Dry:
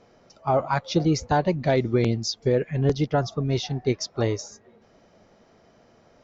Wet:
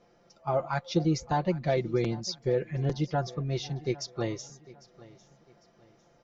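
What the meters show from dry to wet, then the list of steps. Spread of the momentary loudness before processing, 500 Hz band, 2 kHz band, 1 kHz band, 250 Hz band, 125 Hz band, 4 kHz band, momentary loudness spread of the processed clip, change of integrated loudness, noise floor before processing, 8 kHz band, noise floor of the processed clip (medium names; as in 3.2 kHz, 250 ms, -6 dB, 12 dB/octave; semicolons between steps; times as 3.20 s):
5 LU, -6.0 dB, -6.5 dB, -6.0 dB, -6.0 dB, -5.5 dB, -6.5 dB, 6 LU, -6.0 dB, -58 dBFS, no reading, -63 dBFS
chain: comb 5.8 ms, depth 56%; on a send: feedback delay 801 ms, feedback 33%, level -20.5 dB; on the sum: trim -7.5 dB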